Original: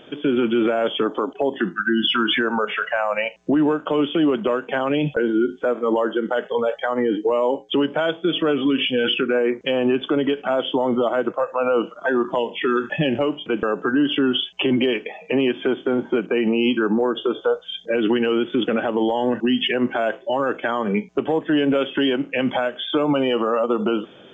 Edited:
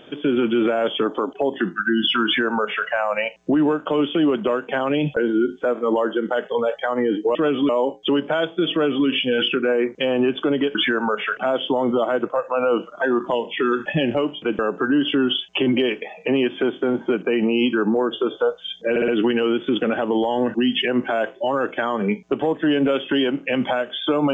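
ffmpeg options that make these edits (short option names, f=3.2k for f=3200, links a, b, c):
-filter_complex "[0:a]asplit=8[a][b][c][d][e][f][g][h];[a]atrim=end=7.352[i];[b]atrim=start=8.378:end=8.722[j];[c]atrim=start=7.348:end=10.412[k];[d]atrim=start=2.248:end=2.872[l];[e]atrim=start=10.408:end=18.002[m];[f]atrim=start=17.938:end=18.002[n];[g]atrim=start=17.938:end=18.002[o];[h]atrim=start=17.938[p];[i][j]acrossfade=d=0.004:c1=hsin:c2=hsin[q];[q][k]acrossfade=d=0.004:c1=hsin:c2=hsin[r];[r][l]acrossfade=d=0.004:c1=hsin:c2=hsin[s];[s][m]acrossfade=d=0.004:c1=hsin:c2=hsin[t];[t][n]acrossfade=d=0.004:c1=hsin:c2=hsin[u];[u][o]acrossfade=d=0.004:c1=hsin:c2=hsin[v];[v][p]acrossfade=d=0.004:c1=hsin:c2=hsin"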